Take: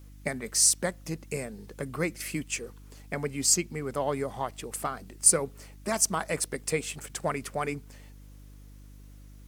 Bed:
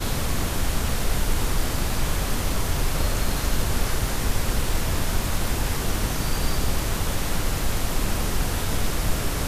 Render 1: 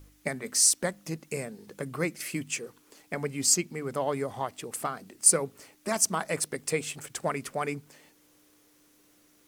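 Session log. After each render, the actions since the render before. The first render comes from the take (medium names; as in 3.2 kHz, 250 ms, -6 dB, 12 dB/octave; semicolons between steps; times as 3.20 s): de-hum 50 Hz, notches 5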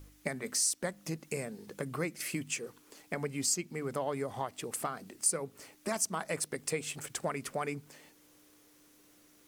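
compression 2:1, threshold -34 dBFS, peak gain reduction 11 dB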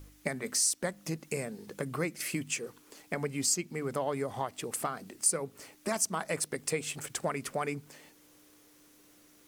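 trim +2 dB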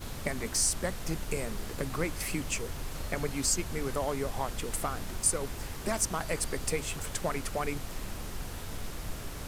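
add bed -14.5 dB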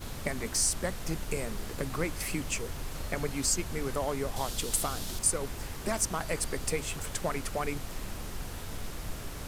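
4.36–5.19 s: resonant high shelf 2.8 kHz +6.5 dB, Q 1.5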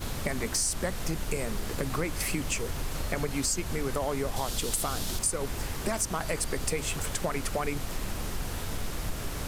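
in parallel at -0.5 dB: peak limiter -22 dBFS, peak gain reduction 7.5 dB; on the sum: compression 2.5:1, threshold -27 dBFS, peak gain reduction 6.5 dB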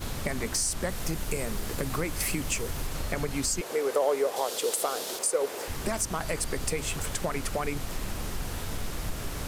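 0.89–2.87 s: treble shelf 9 kHz +5 dB; 3.61–5.68 s: resonant high-pass 470 Hz, resonance Q 3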